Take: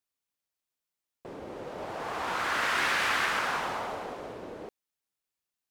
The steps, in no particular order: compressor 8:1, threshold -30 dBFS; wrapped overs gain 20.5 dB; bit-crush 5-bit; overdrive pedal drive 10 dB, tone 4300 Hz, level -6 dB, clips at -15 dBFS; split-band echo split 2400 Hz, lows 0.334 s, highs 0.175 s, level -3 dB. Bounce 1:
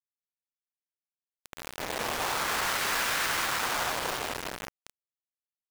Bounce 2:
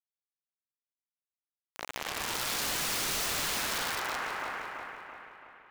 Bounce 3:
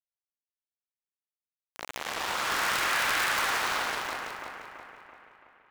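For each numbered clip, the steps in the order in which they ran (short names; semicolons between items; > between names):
wrapped overs > overdrive pedal > compressor > split-band echo > bit-crush; bit-crush > split-band echo > overdrive pedal > wrapped overs > compressor; bit-crush > compressor > overdrive pedal > wrapped overs > split-band echo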